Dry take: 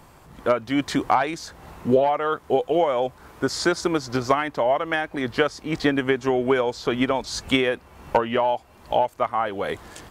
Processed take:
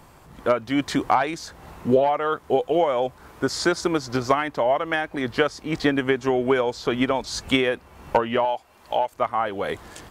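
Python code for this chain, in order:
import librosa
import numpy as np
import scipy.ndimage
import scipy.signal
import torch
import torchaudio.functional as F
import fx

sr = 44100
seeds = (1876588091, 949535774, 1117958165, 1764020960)

y = fx.low_shelf(x, sr, hz=340.0, db=-11.0, at=(8.45, 9.12))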